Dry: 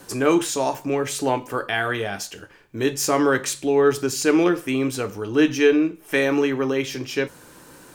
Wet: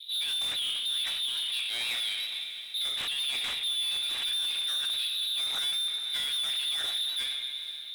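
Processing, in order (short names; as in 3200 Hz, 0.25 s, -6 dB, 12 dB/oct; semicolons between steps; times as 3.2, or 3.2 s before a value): tracing distortion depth 0.31 ms; low-pass opened by the level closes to 390 Hz, open at -13.5 dBFS; compressor 2.5:1, threshold -22 dBFS, peak gain reduction 7.5 dB; de-hum 67.49 Hz, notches 28; reverb RT60 2.2 s, pre-delay 4 ms, DRR 10 dB; inverted band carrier 3900 Hz; high shelf 3000 Hz +4.5 dB; limiter -19 dBFS, peak gain reduction 12 dB; sample leveller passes 3; diffused feedback echo 0.463 s, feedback 43%, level -13.5 dB; gain -8.5 dB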